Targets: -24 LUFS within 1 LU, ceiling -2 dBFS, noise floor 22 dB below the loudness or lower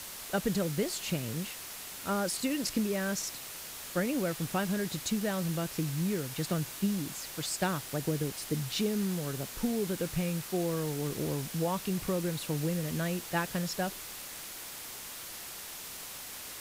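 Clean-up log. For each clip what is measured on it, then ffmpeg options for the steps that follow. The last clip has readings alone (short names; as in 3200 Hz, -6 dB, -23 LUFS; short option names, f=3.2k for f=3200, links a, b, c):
noise floor -44 dBFS; noise floor target -56 dBFS; loudness -33.5 LUFS; peak -17.0 dBFS; loudness target -24.0 LUFS
-> -af "afftdn=nr=12:nf=-44"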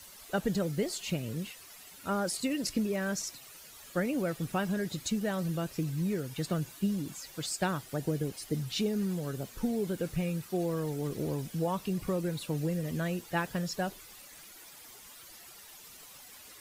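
noise floor -52 dBFS; noise floor target -56 dBFS
-> -af "afftdn=nr=6:nf=-52"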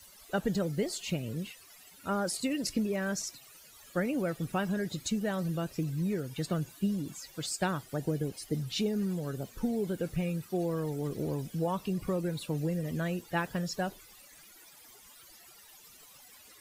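noise floor -56 dBFS; loudness -33.5 LUFS; peak -17.5 dBFS; loudness target -24.0 LUFS
-> -af "volume=9.5dB"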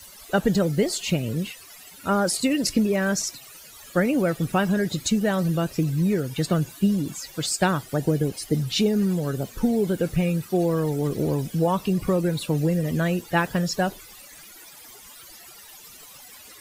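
loudness -24.0 LUFS; peak -8.0 dBFS; noise floor -46 dBFS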